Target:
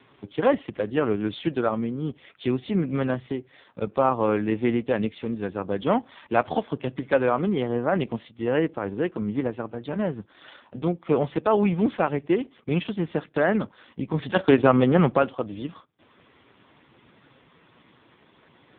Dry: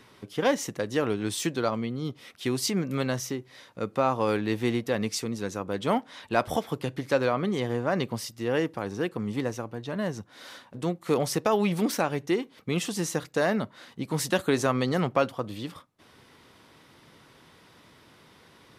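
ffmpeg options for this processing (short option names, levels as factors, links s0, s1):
-filter_complex "[0:a]adynamicequalizer=threshold=0.00316:dfrequency=120:dqfactor=3.5:tfrequency=120:tqfactor=3.5:attack=5:release=100:ratio=0.375:range=2.5:mode=cutabove:tftype=bell,asettb=1/sr,asplit=3[s0][s1][s2];[s0]atrim=end=14.224[s3];[s1]atrim=start=14.22:end=15.17,asetpts=PTS-STARTPTS,afade=t=in:d=0.004:c=qsin,afade=t=out:st=0.946:d=0.004:c=qsin,acontrast=22[s4];[s2]atrim=start=15.166[s5];[s3][s4]acrossfade=d=0.004:c1=hsin:c2=qsin[s6];[s6][s5]acrossfade=d=0.004:c1=qsin:c2=hsin,volume=1.58" -ar 8000 -c:a libopencore_amrnb -b:a 4750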